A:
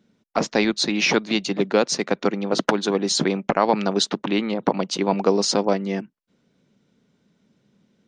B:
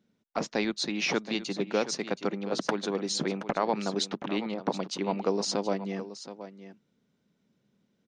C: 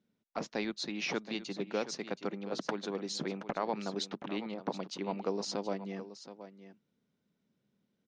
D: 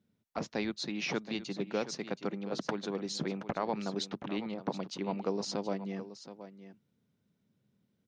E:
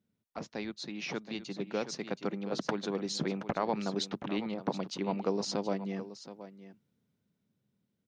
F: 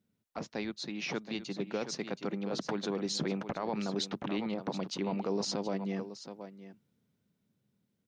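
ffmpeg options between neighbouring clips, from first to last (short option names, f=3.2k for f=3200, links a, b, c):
-af "aecho=1:1:724:0.224,volume=-9dB"
-af "lowpass=7k,volume=-6.5dB"
-af "equalizer=f=97:t=o:w=1.2:g=11.5"
-af "dynaudnorm=f=320:g=11:m=6.5dB,volume=-4.5dB"
-af "alimiter=level_in=1dB:limit=-24dB:level=0:latency=1:release=22,volume=-1dB,volume=1.5dB"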